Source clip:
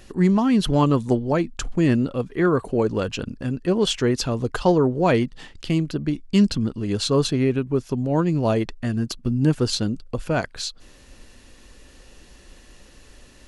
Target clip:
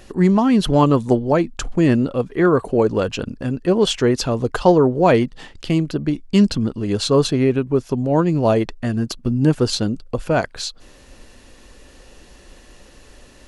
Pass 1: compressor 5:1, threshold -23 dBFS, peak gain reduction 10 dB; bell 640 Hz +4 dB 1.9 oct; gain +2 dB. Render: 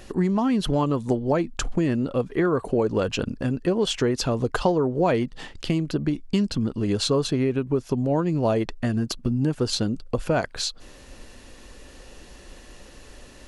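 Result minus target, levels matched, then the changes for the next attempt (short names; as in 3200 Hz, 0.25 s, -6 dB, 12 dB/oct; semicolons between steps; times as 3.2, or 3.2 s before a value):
compressor: peak gain reduction +10 dB
remove: compressor 5:1, threshold -23 dBFS, peak gain reduction 10 dB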